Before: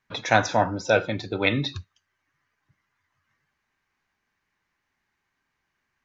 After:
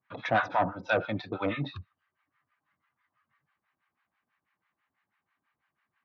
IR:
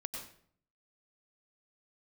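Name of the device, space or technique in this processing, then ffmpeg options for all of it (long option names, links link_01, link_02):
guitar amplifier with harmonic tremolo: -filter_complex "[0:a]acrossover=split=750[link_01][link_02];[link_01]aeval=exprs='val(0)*(1-1/2+1/2*cos(2*PI*6.1*n/s))':channel_layout=same[link_03];[link_02]aeval=exprs='val(0)*(1-1/2-1/2*cos(2*PI*6.1*n/s))':channel_layout=same[link_04];[link_03][link_04]amix=inputs=2:normalize=0,asoftclip=type=tanh:threshold=-19dB,highpass=110,equalizer=frequency=410:width_type=q:width=4:gain=-6,equalizer=frequency=700:width_type=q:width=4:gain=3,equalizer=frequency=1200:width_type=q:width=4:gain=7,lowpass=frequency=3500:width=0.5412,lowpass=frequency=3500:width=1.3066,volume=1dB"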